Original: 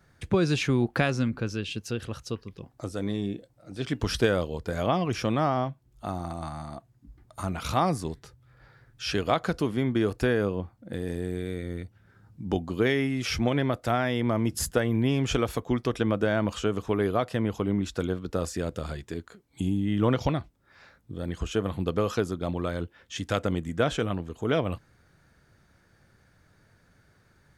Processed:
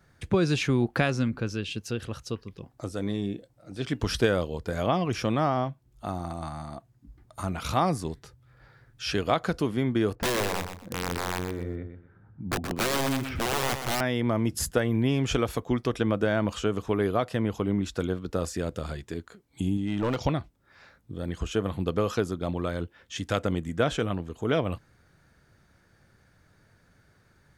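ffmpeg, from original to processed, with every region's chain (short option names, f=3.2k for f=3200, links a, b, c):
-filter_complex "[0:a]asettb=1/sr,asplit=3[a][b][c];[a]atrim=end=10.154[d];[b]atrim=start=10.15:end=14.01,asetpts=PTS-STARTPTS,afade=t=in:d=0.004:c=qsin,afade=t=out:st=3.856:d=0.004:c=qsin,lowpass=1.6k,aeval=exprs='(mod(11.9*val(0)+1,2)-1)/11.9':c=same,aecho=1:1:123|246|369:0.398|0.0955|0.0229,atrim=end_sample=170226[e];[c]atrim=start=14.006[f];[d][e]acrossfade=d=0.004:c1=hsin:c2=qsin[g];[g][f]acrossfade=d=0.004:c1=qsin:c2=hsin,asettb=1/sr,asplit=3[h][i][j];[h]atrim=end=19.774[k];[i]atrim=start=19.77:end=20.23,asetpts=PTS-STARTPTS,afade=t=in:d=0.004:c=qsin,afade=t=out:st=0.456:d=0.004:c=qsin,lowpass=f=9.6k:w=0.5412,lowpass=f=9.6k:w=1.3066,bass=f=250:g=-4,treble=f=4k:g=3,volume=22dB,asoftclip=hard,volume=-22dB[l];[j]atrim=start=20.226[m];[k][l]acrossfade=d=0.004:c1=hsin:c2=qsin[n];[n][m]acrossfade=d=0.004:c1=qsin:c2=hsin"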